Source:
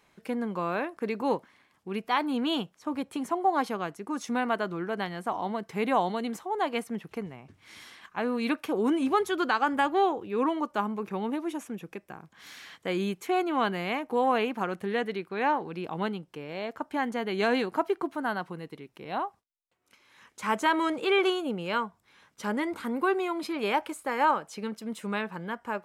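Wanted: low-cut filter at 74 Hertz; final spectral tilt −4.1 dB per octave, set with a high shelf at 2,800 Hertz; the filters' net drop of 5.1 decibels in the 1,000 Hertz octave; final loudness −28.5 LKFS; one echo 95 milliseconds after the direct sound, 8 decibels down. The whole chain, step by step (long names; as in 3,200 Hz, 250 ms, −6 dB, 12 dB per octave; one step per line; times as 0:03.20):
high-pass filter 74 Hz
parametric band 1,000 Hz −7.5 dB
high-shelf EQ 2,800 Hz +6.5 dB
single-tap delay 95 ms −8 dB
level +2 dB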